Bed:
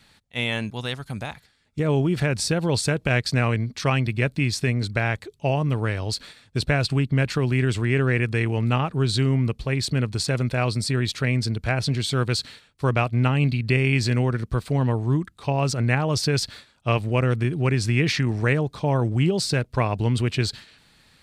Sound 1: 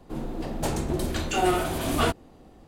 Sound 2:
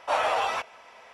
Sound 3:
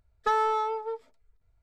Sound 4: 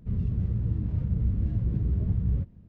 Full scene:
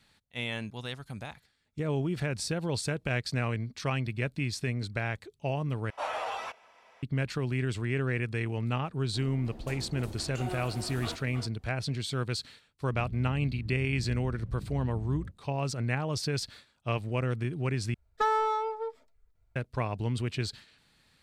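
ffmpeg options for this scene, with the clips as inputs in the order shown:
-filter_complex "[0:a]volume=0.355[s0];[1:a]asplit=2[s1][s2];[s2]adelay=314.9,volume=0.447,highshelf=f=4000:g=-7.08[s3];[s1][s3]amix=inputs=2:normalize=0[s4];[s0]asplit=3[s5][s6][s7];[s5]atrim=end=5.904[s8];[2:a]atrim=end=1.13,asetpts=PTS-STARTPTS,volume=0.355[s9];[s6]atrim=start=7.026:end=17.944[s10];[3:a]atrim=end=1.62,asetpts=PTS-STARTPTS,volume=0.841[s11];[s7]atrim=start=19.556[s12];[s4]atrim=end=2.67,asetpts=PTS-STARTPTS,volume=0.158,afade=t=in:d=0.004:c=hsin,afade=t=out:st=2.666:d=0.004:c=hsin,adelay=9040[s13];[4:a]atrim=end=2.68,asetpts=PTS-STARTPTS,volume=0.211,afade=t=in:d=0.004:c=hsin,afade=t=out:st=2.676:d=0.004:c=hsin,adelay=12870[s14];[s8][s9]acrossfade=d=0.004:c1=hsin:c2=hsin[s15];[s15][s10]acrossfade=d=0.004:c1=hsin:c2=hsin[s16];[s16][s11]acrossfade=d=0.004:c1=hsin:c2=hsin[s17];[s17][s12]acrossfade=d=0.004:c1=hsin:c2=hsin[s18];[s18][s13][s14]amix=inputs=3:normalize=0"

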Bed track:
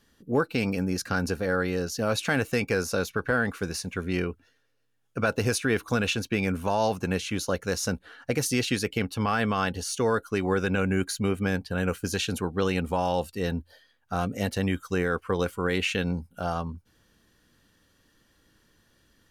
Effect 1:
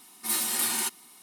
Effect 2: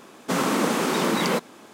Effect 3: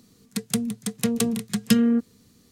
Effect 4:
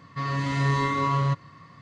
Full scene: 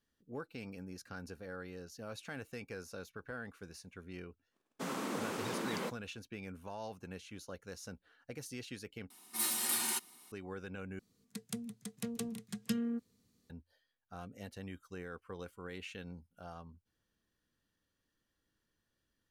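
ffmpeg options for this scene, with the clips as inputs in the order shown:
-filter_complex "[0:a]volume=0.106[s0];[2:a]agate=range=0.0562:threshold=0.00562:ratio=16:release=100:detection=peak[s1];[s0]asplit=3[s2][s3][s4];[s2]atrim=end=9.104[s5];[1:a]atrim=end=1.22,asetpts=PTS-STARTPTS,volume=0.473[s6];[s3]atrim=start=10.316:end=10.994[s7];[3:a]atrim=end=2.51,asetpts=PTS-STARTPTS,volume=0.15[s8];[s4]atrim=start=13.496[s9];[s1]atrim=end=1.73,asetpts=PTS-STARTPTS,volume=0.158,afade=t=in:d=0.004:c=hsin,afade=t=out:st=1.726:d=0.004:c=hsin,adelay=4510[s10];[s5][s6]acrossfade=d=0.004:c1=hsin:c2=hsin[s11];[s11][s7]acrossfade=d=0.004:c1=hsin:c2=hsin[s12];[s12][s8]acrossfade=d=0.004:c1=hsin:c2=hsin[s13];[s13][s9]acrossfade=d=0.004:c1=hsin:c2=hsin[s14];[s14][s10]amix=inputs=2:normalize=0"

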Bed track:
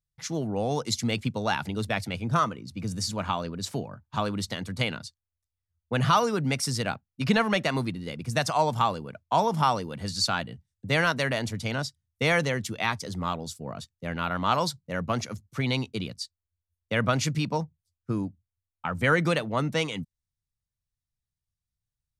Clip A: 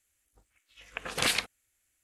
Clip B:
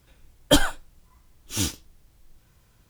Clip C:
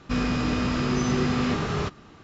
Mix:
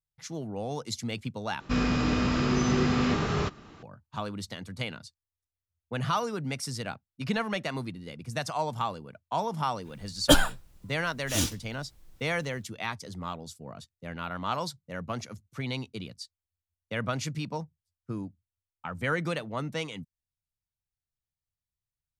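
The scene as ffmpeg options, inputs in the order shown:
-filter_complex "[0:a]volume=0.473,asplit=2[s0][s1];[s0]atrim=end=1.604[s2];[3:a]atrim=end=2.23,asetpts=PTS-STARTPTS,volume=0.891[s3];[s1]atrim=start=3.826[s4];[2:a]atrim=end=2.89,asetpts=PTS-STARTPTS,volume=0.841,afade=t=in:d=0.1,afade=t=out:st=2.79:d=0.1,adelay=431298S[s5];[s2][s3]acrossfade=d=0.004:c1=hsin:c2=hsin[s6];[s6][s4]acrossfade=d=0.004:c1=hsin:c2=hsin[s7];[s7][s5]amix=inputs=2:normalize=0"

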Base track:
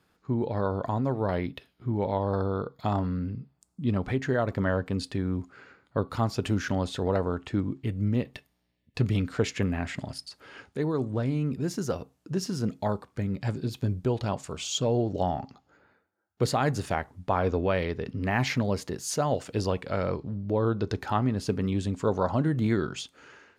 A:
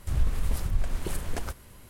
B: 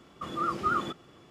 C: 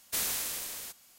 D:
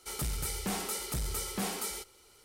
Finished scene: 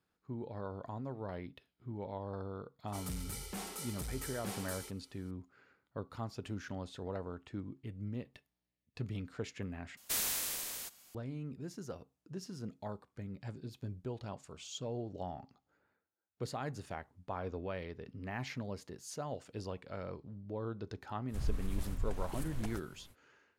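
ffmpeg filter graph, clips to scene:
-filter_complex "[0:a]volume=0.188[s0];[4:a]aresample=32000,aresample=44100[s1];[3:a]aeval=exprs='(tanh(14.1*val(0)+0.1)-tanh(0.1))/14.1':c=same[s2];[s0]asplit=2[s3][s4];[s3]atrim=end=9.974[s5];[s2]atrim=end=1.18,asetpts=PTS-STARTPTS,volume=0.841[s6];[s4]atrim=start=11.146[s7];[s1]atrim=end=2.44,asetpts=PTS-STARTPTS,volume=0.376,afade=t=in:d=0.004:c=hsin,afade=t=out:st=2.436:d=0.004:c=hsin,adelay=2870[s8];[1:a]atrim=end=1.89,asetpts=PTS-STARTPTS,volume=0.316,afade=t=in:d=0.05,afade=t=out:st=1.84:d=0.05,adelay=21270[s9];[s5][s6]acrossfade=d=0.004:c1=hsin:c2=hsin[s10];[s10][s7]acrossfade=d=0.004:c1=hsin:c2=hsin[s11];[s11][s8][s9]amix=inputs=3:normalize=0"

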